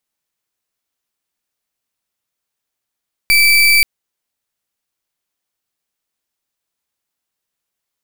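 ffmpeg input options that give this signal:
-f lavfi -i "aevalsrc='0.316*(2*lt(mod(2320*t,1),0.34)-1)':d=0.53:s=44100"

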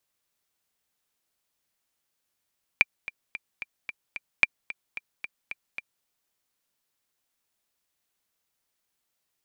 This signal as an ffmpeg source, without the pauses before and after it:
-f lavfi -i "aevalsrc='pow(10,(-4-17*gte(mod(t,6*60/222),60/222))/20)*sin(2*PI*2370*mod(t,60/222))*exp(-6.91*mod(t,60/222)/0.03)':d=3.24:s=44100"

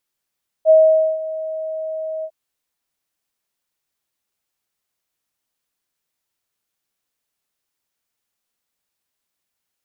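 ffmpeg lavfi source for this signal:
-f lavfi -i "aevalsrc='0.501*sin(2*PI*634*t)':d=1.653:s=44100,afade=t=in:d=0.05,afade=t=out:st=0.05:d=0.482:silence=0.141,afade=t=out:st=1.59:d=0.063"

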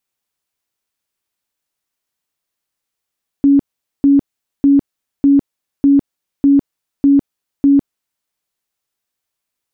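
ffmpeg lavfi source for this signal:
-f lavfi -i "aevalsrc='0.501*sin(2*PI*280*mod(t,0.6))*lt(mod(t,0.6),43/280)':d=4.8:s=44100"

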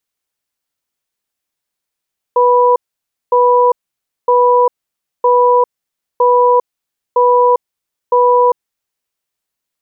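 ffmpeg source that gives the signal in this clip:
-f lavfi -i "aevalsrc='0.335*(sin(2*PI*491*t)+sin(2*PI*984*t))*clip(min(mod(t,0.96),0.4-mod(t,0.96))/0.005,0,1)':d=6.21:s=44100"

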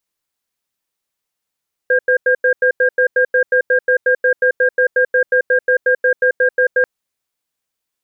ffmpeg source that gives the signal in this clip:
-f lavfi -i "aevalsrc='0.237*(sin(2*PI*505*t)+sin(2*PI*1610*t))*clip(min(mod(t,0.18),0.09-mod(t,0.18))/0.005,0,1)':d=4.94:s=44100"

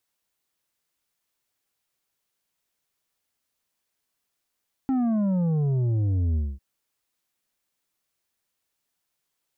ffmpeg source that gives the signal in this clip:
-f lavfi -i "aevalsrc='0.0841*clip((1.7-t)/0.23,0,1)*tanh(2.24*sin(2*PI*270*1.7/log(65/270)*(exp(log(65/270)*t/1.7)-1)))/tanh(2.24)':d=1.7:s=44100"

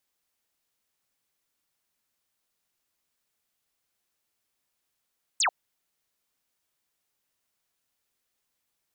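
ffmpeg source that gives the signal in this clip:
-f lavfi -i "aevalsrc='0.0891*clip(t/0.002,0,1)*clip((0.09-t)/0.002,0,1)*sin(2*PI*8800*0.09/log(630/8800)*(exp(log(630/8800)*t/0.09)-1))':d=0.09:s=44100"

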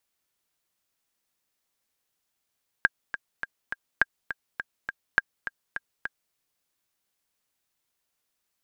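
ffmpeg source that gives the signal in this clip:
-f lavfi -i "aevalsrc='pow(10,(-5.5-12*gte(mod(t,4*60/206),60/206))/20)*sin(2*PI*1610*mod(t,60/206))*exp(-6.91*mod(t,60/206)/0.03)':d=3.49:s=44100"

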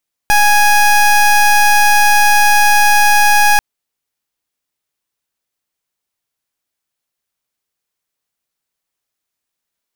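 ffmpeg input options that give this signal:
-f lavfi -i "aevalsrc='0.355*(2*lt(mod(830*t,1),0.22)-1)':d=3.29:s=44100"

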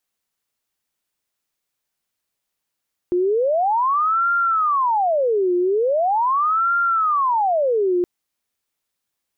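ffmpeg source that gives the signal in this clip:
-f lavfi -i "aevalsrc='0.168*sin(2*PI*(872*t-518/(2*PI*0.41)*sin(2*PI*0.41*t)))':d=4.92:s=44100"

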